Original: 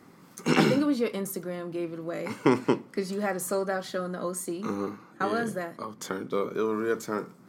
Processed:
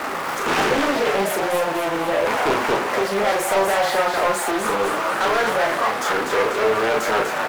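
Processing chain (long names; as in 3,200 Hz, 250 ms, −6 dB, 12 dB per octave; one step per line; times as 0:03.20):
converter with a step at zero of −30.5 dBFS
three-way crossover with the lows and the highs turned down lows −19 dB, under 440 Hz, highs −13 dB, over 2,300 Hz
leveller curve on the samples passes 5
mains-hum notches 60/120/180/240/300/360 Hz
double-tracking delay 36 ms −4 dB
on a send: echo with shifted repeats 246 ms, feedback 56%, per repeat +150 Hz, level −5.5 dB
on the sum: highs frequency-modulated by the lows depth 0.48 ms
level −4 dB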